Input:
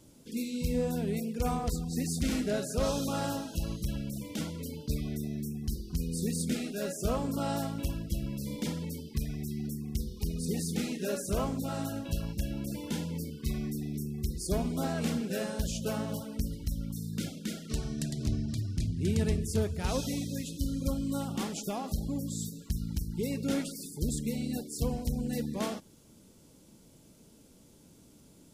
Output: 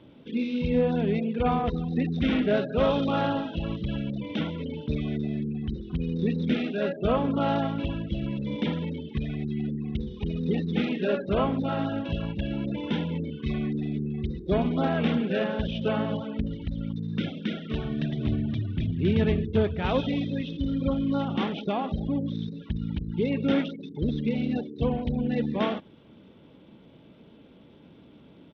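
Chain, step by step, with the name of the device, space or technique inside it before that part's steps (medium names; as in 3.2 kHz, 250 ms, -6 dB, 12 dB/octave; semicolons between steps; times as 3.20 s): Bluetooth headset (high-pass 140 Hz 6 dB/octave; resampled via 8 kHz; trim +8 dB; SBC 64 kbps 32 kHz)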